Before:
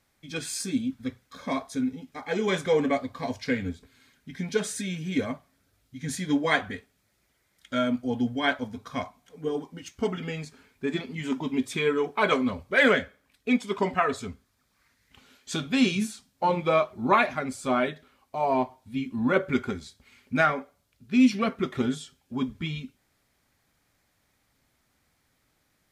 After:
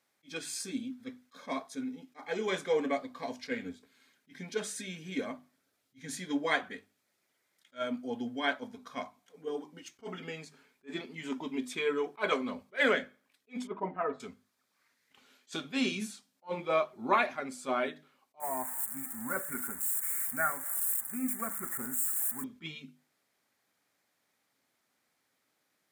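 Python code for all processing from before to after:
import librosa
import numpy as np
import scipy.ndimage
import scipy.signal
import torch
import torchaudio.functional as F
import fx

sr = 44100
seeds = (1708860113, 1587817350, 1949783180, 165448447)

y = fx.chain(x, sr, fx.lowpass(hz=1100.0, slope=12),
    fx.comb(ms=6.3, depth=0.53), at=(13.67, 14.2))
y = fx.chain(y, sr, fx.crossing_spikes(level_db=-17.0),
    fx.ellip_bandstop(low_hz=1800.0, high_hz=8000.0, order=3, stop_db=50),
    fx.peak_eq(hz=400.0, db=-12.5, octaves=1.4), at=(18.4, 22.44))
y = scipy.signal.sosfilt(scipy.signal.butter(2, 240.0, 'highpass', fs=sr, output='sos'), y)
y = fx.hum_notches(y, sr, base_hz=50, count=7)
y = fx.attack_slew(y, sr, db_per_s=380.0)
y = y * librosa.db_to_amplitude(-5.5)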